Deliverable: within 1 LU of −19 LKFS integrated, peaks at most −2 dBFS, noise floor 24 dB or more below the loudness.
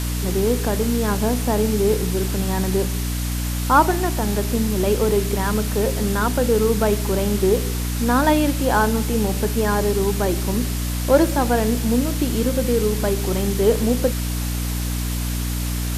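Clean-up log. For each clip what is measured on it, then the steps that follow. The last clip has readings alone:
mains hum 60 Hz; hum harmonics up to 300 Hz; level of the hum −22 dBFS; background noise floor −24 dBFS; target noise floor −45 dBFS; integrated loudness −20.5 LKFS; sample peak −3.0 dBFS; target loudness −19.0 LKFS
→ mains-hum notches 60/120/180/240/300 Hz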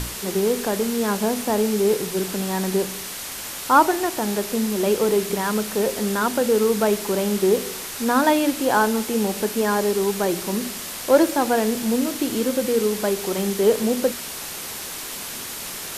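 mains hum none found; background noise floor −33 dBFS; target noise floor −46 dBFS
→ broadband denoise 13 dB, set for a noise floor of −33 dBFS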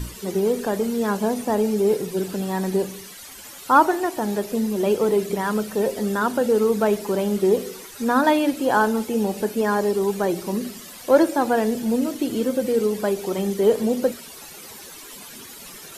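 background noise floor −41 dBFS; target noise floor −46 dBFS
→ broadband denoise 6 dB, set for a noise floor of −41 dBFS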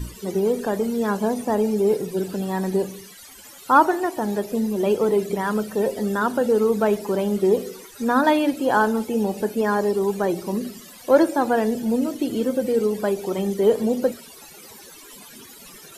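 background noise floor −44 dBFS; target noise floor −46 dBFS
→ broadband denoise 6 dB, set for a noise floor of −44 dBFS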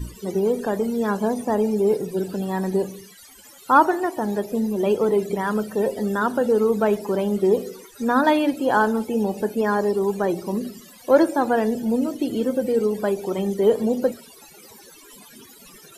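background noise floor −47 dBFS; integrated loudness −22.0 LKFS; sample peak −4.0 dBFS; target loudness −19.0 LKFS
→ level +3 dB
brickwall limiter −2 dBFS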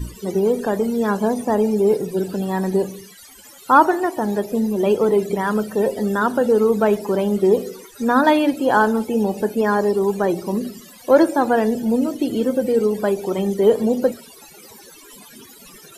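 integrated loudness −19.0 LKFS; sample peak −2.0 dBFS; background noise floor −44 dBFS

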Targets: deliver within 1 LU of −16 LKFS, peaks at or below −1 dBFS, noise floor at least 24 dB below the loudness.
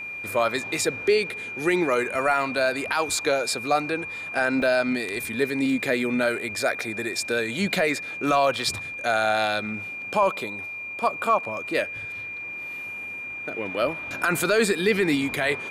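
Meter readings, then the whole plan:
number of dropouts 1; longest dropout 2.1 ms; interfering tone 2,400 Hz; level of the tone −32 dBFS; integrated loudness −24.5 LKFS; sample peak −10.0 dBFS; target loudness −16.0 LKFS
→ repair the gap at 0:04.62, 2.1 ms
notch filter 2,400 Hz, Q 30
level +8.5 dB

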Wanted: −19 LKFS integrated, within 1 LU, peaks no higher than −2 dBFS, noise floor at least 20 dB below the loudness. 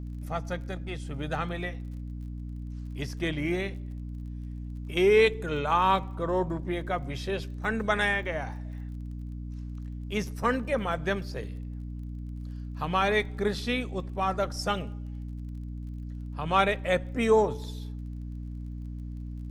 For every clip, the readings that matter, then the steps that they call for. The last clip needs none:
crackle rate 27 per second; mains hum 60 Hz; hum harmonics up to 300 Hz; level of the hum −34 dBFS; integrated loudness −30.5 LKFS; sample peak −9.0 dBFS; target loudness −19.0 LKFS
→ click removal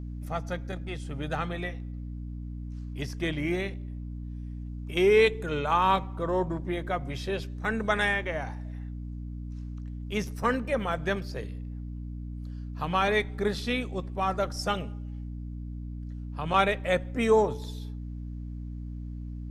crackle rate 0.051 per second; mains hum 60 Hz; hum harmonics up to 300 Hz; level of the hum −34 dBFS
→ mains-hum notches 60/120/180/240/300 Hz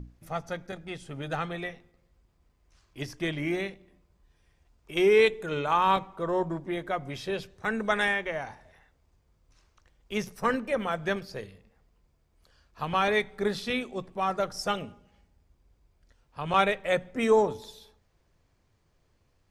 mains hum none found; integrated loudness −28.5 LKFS; sample peak −9.0 dBFS; target loudness −19.0 LKFS
→ level +9.5 dB
brickwall limiter −2 dBFS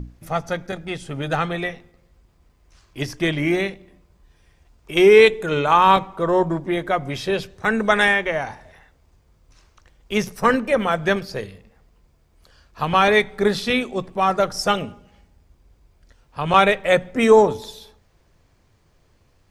integrated loudness −19.5 LKFS; sample peak −2.0 dBFS; background noise floor −60 dBFS

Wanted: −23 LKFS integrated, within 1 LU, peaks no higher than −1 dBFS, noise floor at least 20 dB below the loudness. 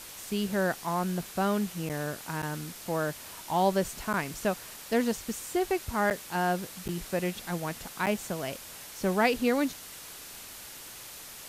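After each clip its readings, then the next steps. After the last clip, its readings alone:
number of dropouts 6; longest dropout 8.1 ms; background noise floor −45 dBFS; target noise floor −51 dBFS; integrated loudness −30.5 LKFS; sample peak −12.5 dBFS; target loudness −23.0 LKFS
→ repair the gap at 0:01.89/0:02.42/0:04.13/0:06.10/0:06.88/0:08.06, 8.1 ms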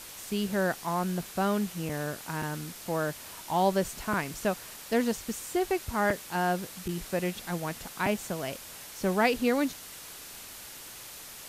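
number of dropouts 0; background noise floor −45 dBFS; target noise floor −51 dBFS
→ broadband denoise 6 dB, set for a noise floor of −45 dBFS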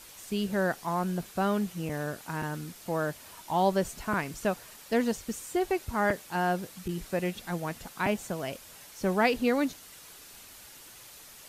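background noise floor −50 dBFS; target noise floor −51 dBFS
→ broadband denoise 6 dB, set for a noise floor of −50 dBFS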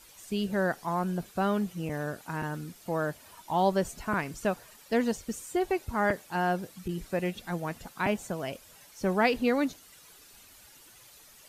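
background noise floor −55 dBFS; integrated loudness −31.0 LKFS; sample peak −12.5 dBFS; target loudness −23.0 LKFS
→ level +8 dB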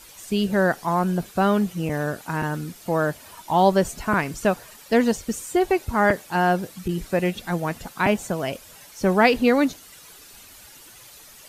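integrated loudness −23.0 LKFS; sample peak −4.5 dBFS; background noise floor −47 dBFS

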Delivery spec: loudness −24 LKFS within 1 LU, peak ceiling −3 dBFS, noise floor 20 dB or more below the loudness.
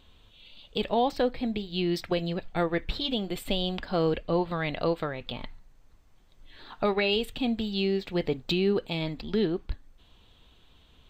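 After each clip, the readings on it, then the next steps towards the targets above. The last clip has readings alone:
integrated loudness −29.0 LKFS; sample peak −15.0 dBFS; target loudness −24.0 LKFS
→ level +5 dB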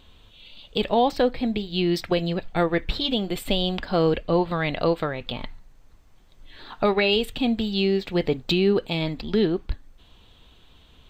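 integrated loudness −24.0 LKFS; sample peak −10.0 dBFS; background noise floor −54 dBFS

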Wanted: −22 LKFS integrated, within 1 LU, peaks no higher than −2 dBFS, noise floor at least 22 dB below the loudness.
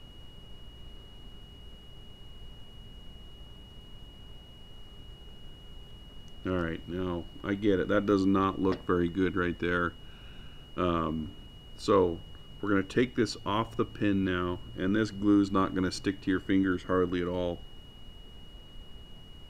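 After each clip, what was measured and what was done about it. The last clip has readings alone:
interfering tone 2,900 Hz; level of the tone −54 dBFS; background noise floor −50 dBFS; target noise floor −52 dBFS; integrated loudness −29.5 LKFS; sample peak −12.5 dBFS; target loudness −22.0 LKFS
→ notch filter 2,900 Hz, Q 30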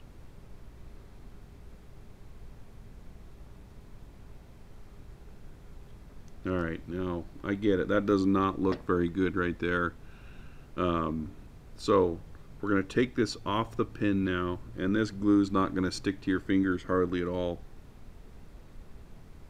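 interfering tone none found; background noise floor −51 dBFS; target noise floor −52 dBFS
→ noise reduction from a noise print 6 dB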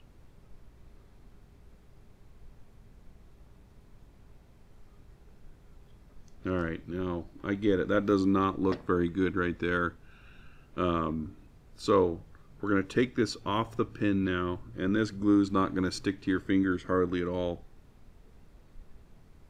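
background noise floor −57 dBFS; integrated loudness −29.5 LKFS; sample peak −12.5 dBFS; target loudness −22.0 LKFS
→ level +7.5 dB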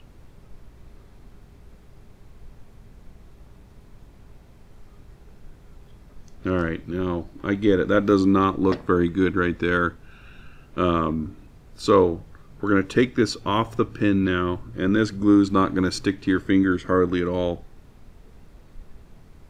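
integrated loudness −22.0 LKFS; sample peak −5.0 dBFS; background noise floor −50 dBFS

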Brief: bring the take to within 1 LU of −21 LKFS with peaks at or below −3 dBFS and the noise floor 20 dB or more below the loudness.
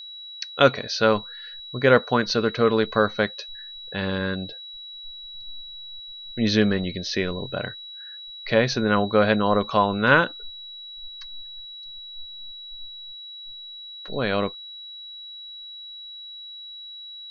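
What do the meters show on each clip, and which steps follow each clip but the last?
interfering tone 3,900 Hz; level of the tone −37 dBFS; integrated loudness −22.5 LKFS; sample peak −2.0 dBFS; target loudness −21.0 LKFS
→ notch filter 3,900 Hz, Q 30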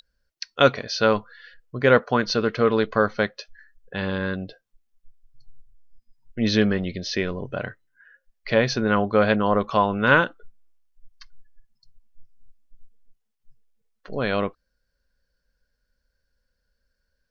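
interfering tone none found; integrated loudness −22.5 LKFS; sample peak −2.0 dBFS; target loudness −21.0 LKFS
→ level +1.5 dB
brickwall limiter −3 dBFS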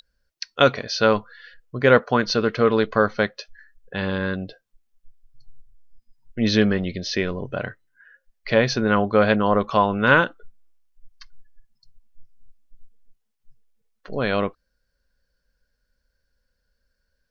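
integrated loudness −21.0 LKFS; sample peak −3.0 dBFS; background noise floor −75 dBFS

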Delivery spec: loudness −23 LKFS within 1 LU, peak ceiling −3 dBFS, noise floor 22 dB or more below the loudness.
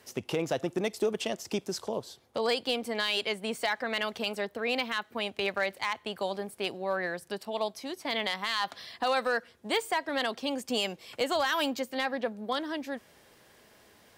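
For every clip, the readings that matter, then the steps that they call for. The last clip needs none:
share of clipped samples 0.2%; peaks flattened at −19.5 dBFS; integrated loudness −31.5 LKFS; sample peak −19.5 dBFS; target loudness −23.0 LKFS
→ clipped peaks rebuilt −19.5 dBFS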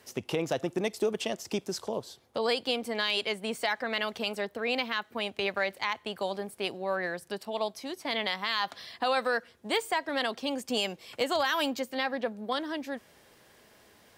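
share of clipped samples 0.0%; integrated loudness −31.5 LKFS; sample peak −14.0 dBFS; target loudness −23.0 LKFS
→ level +8.5 dB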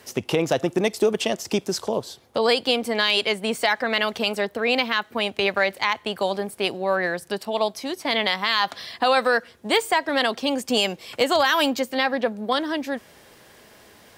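integrated loudness −23.0 LKFS; sample peak −5.5 dBFS; background noise floor −52 dBFS

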